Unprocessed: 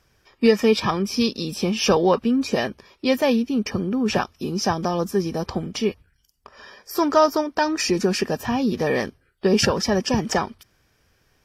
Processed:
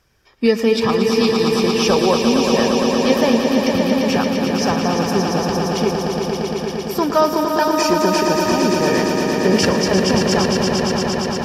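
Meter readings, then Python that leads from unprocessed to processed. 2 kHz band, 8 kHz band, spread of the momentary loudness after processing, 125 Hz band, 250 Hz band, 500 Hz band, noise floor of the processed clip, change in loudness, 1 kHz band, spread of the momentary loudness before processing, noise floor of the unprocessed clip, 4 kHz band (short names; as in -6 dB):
+5.5 dB, +5.5 dB, 4 LU, +6.0 dB, +5.5 dB, +6.0 dB, -26 dBFS, +5.0 dB, +6.0 dB, 8 LU, -65 dBFS, +6.0 dB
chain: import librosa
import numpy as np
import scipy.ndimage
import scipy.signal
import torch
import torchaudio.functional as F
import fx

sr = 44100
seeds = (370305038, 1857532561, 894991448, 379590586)

y = fx.echo_swell(x, sr, ms=115, loudest=5, wet_db=-6.5)
y = y * 10.0 ** (1.0 / 20.0)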